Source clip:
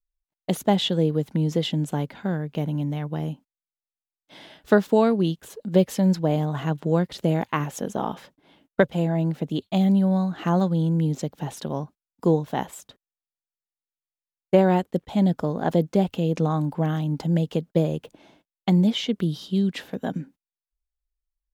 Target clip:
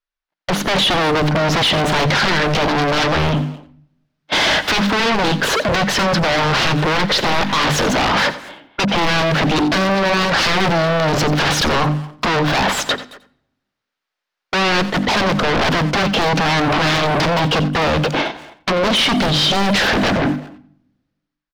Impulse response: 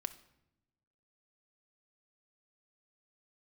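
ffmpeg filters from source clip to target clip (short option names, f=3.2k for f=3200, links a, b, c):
-filter_complex "[0:a]agate=range=-25dB:threshold=-50dB:ratio=16:detection=peak,equalizer=f=1.5k:w=2.1:g=4.5,bandreject=f=50:t=h:w=6,bandreject=f=100:t=h:w=6,bandreject=f=150:t=h:w=6,bandreject=f=200:t=h:w=6,bandreject=f=250:t=h:w=6,bandreject=f=300:t=h:w=6,asplit=2[a][b];[b]aeval=exprs='val(0)*gte(abs(val(0)),0.0841)':c=same,volume=-4dB[c];[a][c]amix=inputs=2:normalize=0,acompressor=threshold=-29dB:ratio=10,alimiter=level_in=3dB:limit=-24dB:level=0:latency=1:release=35,volume=-3dB,dynaudnorm=f=300:g=5:m=10.5dB,asplit=2[d][e];[e]highpass=f=720:p=1,volume=22dB,asoftclip=type=tanh:threshold=-21dB[f];[d][f]amix=inputs=2:normalize=0,lowpass=f=1.9k:p=1,volume=-6dB,aeval=exprs='0.0891*sin(PI/2*2.82*val(0)/0.0891)':c=same,highshelf=f=6.4k:t=q:w=1.5:g=-6.5,asplit=2[g][h];[h]adelay=220,highpass=300,lowpass=3.4k,asoftclip=type=hard:threshold=-29.5dB,volume=-14dB[i];[g][i]amix=inputs=2:normalize=0,asplit=2[j][k];[1:a]atrim=start_sample=2205,adelay=88[l];[k][l]afir=irnorm=-1:irlink=0,volume=-13dB[m];[j][m]amix=inputs=2:normalize=0,volume=7.5dB"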